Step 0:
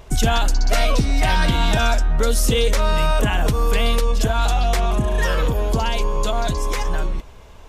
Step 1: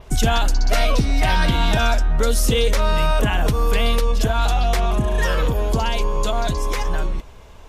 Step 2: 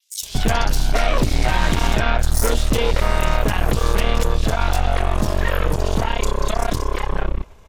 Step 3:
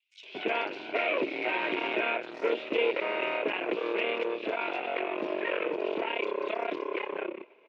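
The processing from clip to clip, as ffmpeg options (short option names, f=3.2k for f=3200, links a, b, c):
-af "adynamicequalizer=threshold=0.00631:dfrequency=7700:dqfactor=1.9:tfrequency=7700:tqfactor=1.9:attack=5:release=100:ratio=0.375:range=2:mode=cutabove:tftype=bell"
-filter_complex "[0:a]aeval=exprs='0.422*(cos(1*acos(clip(val(0)/0.422,-1,1)))-cos(1*PI/2))+0.0473*(cos(3*acos(clip(val(0)/0.422,-1,1)))-cos(3*PI/2))+0.075*(cos(6*acos(clip(val(0)/0.422,-1,1)))-cos(6*PI/2))':c=same,acrossover=split=3800[a][b];[a]adelay=230[c];[c][b]amix=inputs=2:normalize=0"
-af "highpass=f=350:w=0.5412,highpass=f=350:w=1.3066,equalizer=f=350:t=q:w=4:g=7,equalizer=f=790:t=q:w=4:g=-8,equalizer=f=1.2k:t=q:w=4:g=-9,equalizer=f=1.7k:t=q:w=4:g=-7,equalizer=f=2.5k:t=q:w=4:g=9,lowpass=f=2.6k:w=0.5412,lowpass=f=2.6k:w=1.3066,volume=-4.5dB"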